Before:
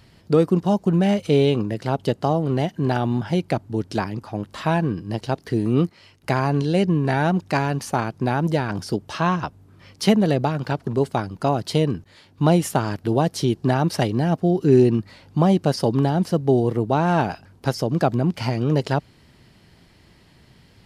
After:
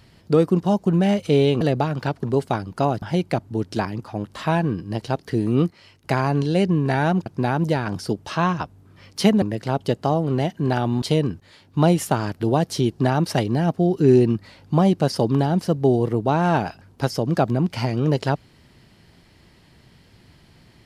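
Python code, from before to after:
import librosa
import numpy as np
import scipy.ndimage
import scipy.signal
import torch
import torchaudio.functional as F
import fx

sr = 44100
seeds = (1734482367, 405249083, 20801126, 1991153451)

y = fx.edit(x, sr, fx.swap(start_s=1.61, length_s=1.6, other_s=10.25, other_length_s=1.41),
    fx.cut(start_s=7.45, length_s=0.64), tone=tone)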